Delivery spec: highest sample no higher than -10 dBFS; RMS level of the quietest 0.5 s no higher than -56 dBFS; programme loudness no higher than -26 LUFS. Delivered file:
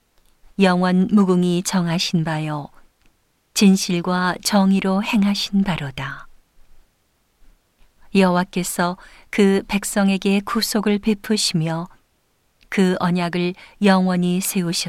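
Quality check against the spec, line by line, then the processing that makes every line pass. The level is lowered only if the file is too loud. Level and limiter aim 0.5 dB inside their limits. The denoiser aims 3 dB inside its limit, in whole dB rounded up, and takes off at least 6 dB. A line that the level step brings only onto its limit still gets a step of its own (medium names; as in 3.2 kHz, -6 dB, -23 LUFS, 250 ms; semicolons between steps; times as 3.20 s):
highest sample -4.0 dBFS: fail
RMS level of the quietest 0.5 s -64 dBFS: pass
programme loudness -19.0 LUFS: fail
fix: trim -7.5 dB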